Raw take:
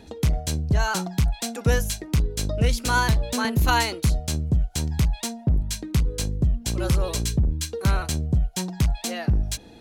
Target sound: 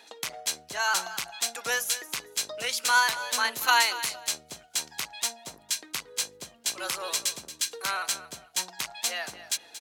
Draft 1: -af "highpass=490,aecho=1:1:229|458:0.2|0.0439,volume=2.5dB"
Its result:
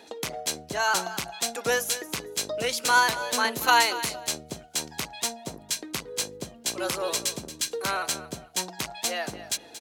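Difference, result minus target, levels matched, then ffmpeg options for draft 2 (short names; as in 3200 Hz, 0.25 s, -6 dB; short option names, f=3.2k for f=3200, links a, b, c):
500 Hz band +7.5 dB
-af "highpass=1k,aecho=1:1:229|458:0.2|0.0439,volume=2.5dB"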